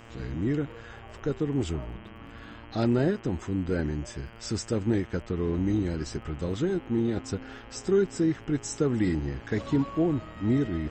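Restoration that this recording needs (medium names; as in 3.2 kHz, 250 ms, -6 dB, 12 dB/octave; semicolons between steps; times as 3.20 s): de-click; de-hum 114.9 Hz, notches 28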